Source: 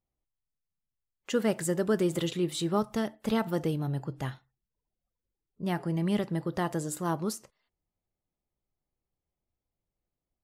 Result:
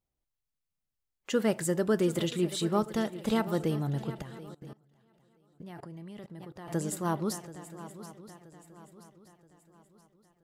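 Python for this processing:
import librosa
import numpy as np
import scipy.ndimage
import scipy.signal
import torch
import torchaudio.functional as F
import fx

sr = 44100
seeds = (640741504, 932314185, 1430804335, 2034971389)

y = fx.echo_swing(x, sr, ms=976, ratio=3, feedback_pct=39, wet_db=-15)
y = fx.level_steps(y, sr, step_db=22, at=(4.22, 6.68))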